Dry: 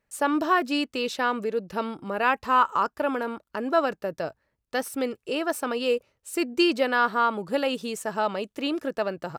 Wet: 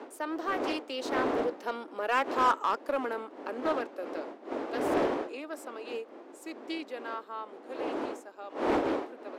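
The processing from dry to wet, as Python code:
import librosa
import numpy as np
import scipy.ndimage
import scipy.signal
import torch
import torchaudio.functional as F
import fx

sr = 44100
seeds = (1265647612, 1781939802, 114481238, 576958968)

p1 = fx.doppler_pass(x, sr, speed_mps=23, closest_m=21.0, pass_at_s=2.38)
p2 = fx.dmg_wind(p1, sr, seeds[0], corner_hz=490.0, level_db=-30.0)
p3 = scipy.signal.sosfilt(scipy.signal.butter(8, 260.0, 'highpass', fs=sr, output='sos'), p2)
p4 = 10.0 ** (-22.5 / 20.0) * (np.abs((p3 / 10.0 ** (-22.5 / 20.0) + 3.0) % 4.0 - 2.0) - 1.0)
p5 = p3 + (p4 * librosa.db_to_amplitude(-9.0))
p6 = fx.doppler_dist(p5, sr, depth_ms=0.35)
y = p6 * librosa.db_to_amplitude(-5.0)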